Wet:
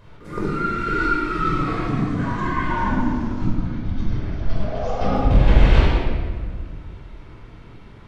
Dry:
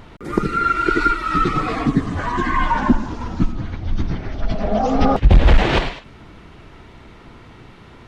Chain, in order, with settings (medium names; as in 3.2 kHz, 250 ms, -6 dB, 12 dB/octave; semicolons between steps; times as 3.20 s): 4.61–5.01 s: high-pass 420 Hz 24 dB/octave; simulated room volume 2300 m³, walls mixed, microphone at 5.2 m; trim -12.5 dB